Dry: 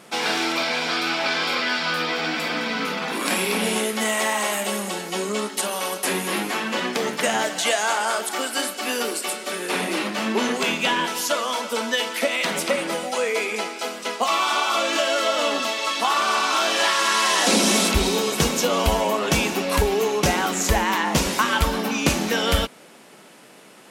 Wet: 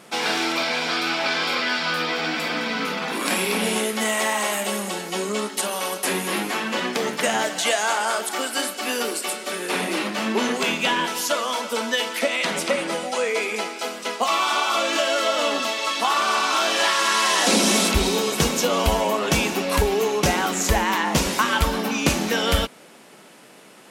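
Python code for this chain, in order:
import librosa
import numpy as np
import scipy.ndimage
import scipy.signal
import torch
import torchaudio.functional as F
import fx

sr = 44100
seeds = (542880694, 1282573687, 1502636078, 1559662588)

y = fx.lowpass(x, sr, hz=11000.0, slope=12, at=(12.19, 13.43))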